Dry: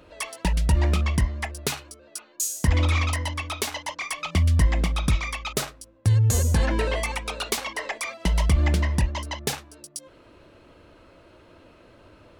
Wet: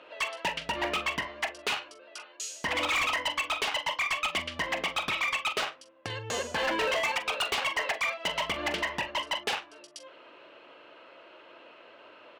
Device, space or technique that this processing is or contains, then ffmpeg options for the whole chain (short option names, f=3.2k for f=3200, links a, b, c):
megaphone: -filter_complex "[0:a]highpass=550,lowpass=3.2k,equalizer=f=2.9k:t=o:w=0.38:g=7,asoftclip=type=hard:threshold=-28dB,asplit=2[a][b];[b]adelay=43,volume=-12.5dB[c];[a][c]amix=inputs=2:normalize=0,volume=3.5dB"